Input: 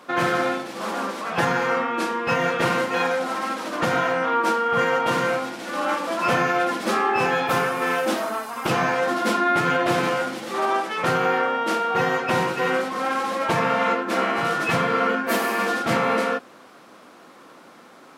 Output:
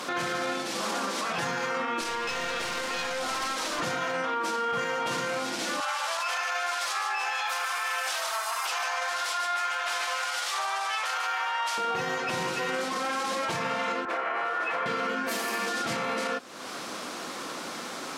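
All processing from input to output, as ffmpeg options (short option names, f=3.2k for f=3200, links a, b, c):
-filter_complex "[0:a]asettb=1/sr,asplit=3[a][b][c];[a]atrim=end=2.014[d];[b]atrim=start=2.01:end=3.8,asetpts=PTS-STARTPTS,afade=t=in:d=0.004:c=qsin,afade=t=out:st=1.786:d=0.004:c=qsin,highpass=f=420:p=1,aeval=exprs='clip(val(0),-1,0.0335)':c=same[e];[c]atrim=start=3.796[f];[d][e]acrossfade=d=0.004:c1=hsin:c2=qsin[g];[g][f]acrossfade=d=0.004:c1=qsin:c2=hsin,asettb=1/sr,asplit=3[h][i][j];[h]atrim=end=5.804[k];[i]atrim=start=5.8:end=11.78,asetpts=PTS-STARTPTS,afade=t=in:d=0.004:c=qsin,afade=t=out:st=5.976:d=0.004:c=qsin,highpass=f=730:w=0.5412,highpass=f=730:w=1.3066,aecho=1:1:145:0.531,atrim=end_sample=263718[l];[j]atrim=start=11.776[m];[k][l]acrossfade=d=0.004:c1=hsin:c2=qsin[n];[n][m]acrossfade=d=0.004:c1=qsin:c2=hsin,asettb=1/sr,asplit=3[o][p][q];[o]atrim=end=14.054[r];[p]atrim=start=14.05:end=14.86,asetpts=PTS-STARTPTS,afade=t=in:d=0.004:c=qsin,afade=t=out:st=0.806:d=0.004:c=qsin,highpass=280,acrossover=split=410 2300:gain=0.178 1 0.0794[s][t][u];[s][t][u]amix=inputs=3:normalize=0[v];[q]atrim=start=14.856[w];[r][v]acrossfade=d=0.004:c1=hsin:c2=qsin[x];[x][w]acrossfade=d=0.004:c1=qsin:c2=hsin,equalizer=f=6.1k:t=o:w=2.2:g=10.5,acompressor=threshold=-40dB:ratio=3,alimiter=level_in=6.5dB:limit=-24dB:level=0:latency=1:release=15,volume=-6.5dB,volume=9dB"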